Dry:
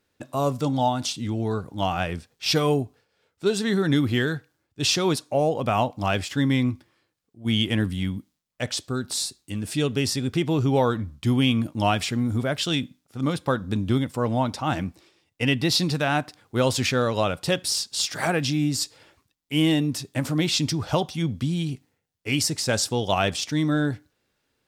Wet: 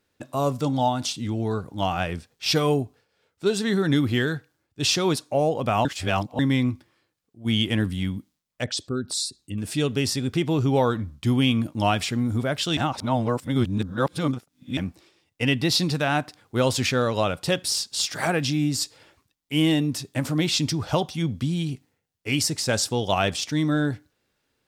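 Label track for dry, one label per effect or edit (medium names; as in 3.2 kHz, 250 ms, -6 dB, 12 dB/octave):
5.850000	6.390000	reverse
8.640000	9.580000	resonances exaggerated exponent 1.5
12.770000	14.770000	reverse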